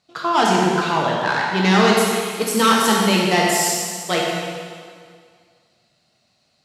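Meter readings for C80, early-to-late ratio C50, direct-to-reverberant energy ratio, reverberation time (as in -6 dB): 1.0 dB, -1.0 dB, -3.0 dB, 2.0 s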